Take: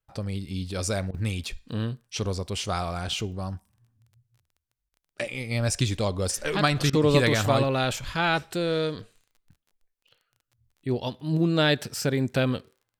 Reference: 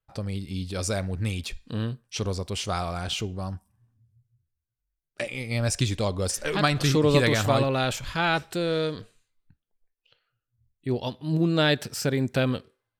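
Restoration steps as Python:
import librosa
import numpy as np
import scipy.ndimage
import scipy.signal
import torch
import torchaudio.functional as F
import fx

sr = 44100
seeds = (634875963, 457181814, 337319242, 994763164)

y = fx.fix_declick_ar(x, sr, threshold=6.5)
y = fx.fix_interpolate(y, sr, at_s=(1.11, 4.89, 6.9), length_ms=30.0)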